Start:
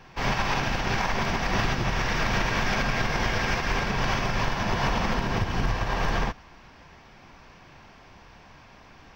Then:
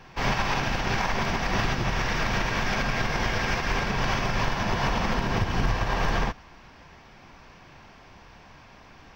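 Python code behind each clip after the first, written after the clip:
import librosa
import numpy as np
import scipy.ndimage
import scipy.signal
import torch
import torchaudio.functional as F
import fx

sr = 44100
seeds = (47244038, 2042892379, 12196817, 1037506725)

y = fx.rider(x, sr, range_db=10, speed_s=0.5)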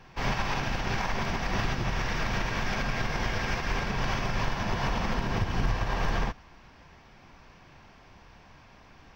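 y = fx.low_shelf(x, sr, hz=160.0, db=3.0)
y = y * librosa.db_to_amplitude(-4.5)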